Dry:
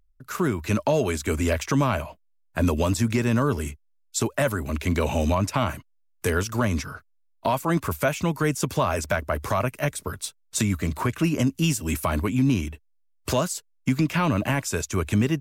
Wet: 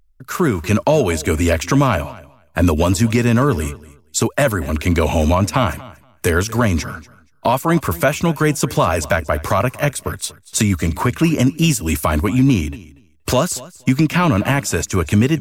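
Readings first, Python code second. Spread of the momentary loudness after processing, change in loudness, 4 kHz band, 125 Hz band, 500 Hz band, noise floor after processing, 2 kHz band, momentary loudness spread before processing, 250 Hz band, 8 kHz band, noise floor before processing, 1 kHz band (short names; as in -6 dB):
8 LU, +7.5 dB, +7.5 dB, +7.5 dB, +7.5 dB, -53 dBFS, +7.5 dB, 8 LU, +7.5 dB, +7.5 dB, -64 dBFS, +7.5 dB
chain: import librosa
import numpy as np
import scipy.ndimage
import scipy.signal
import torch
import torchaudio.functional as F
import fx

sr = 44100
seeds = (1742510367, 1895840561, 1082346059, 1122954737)

y = fx.echo_feedback(x, sr, ms=237, feedback_pct=15, wet_db=-20.0)
y = F.gain(torch.from_numpy(y), 7.5).numpy()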